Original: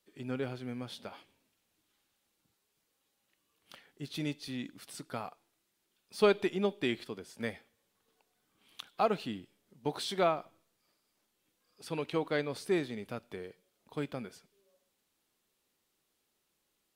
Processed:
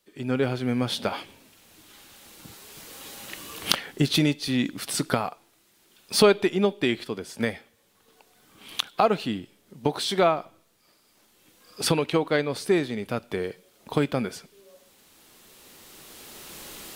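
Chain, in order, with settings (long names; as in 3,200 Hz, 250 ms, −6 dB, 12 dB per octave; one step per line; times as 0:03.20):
camcorder AGC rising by 9.8 dB per second
level +7.5 dB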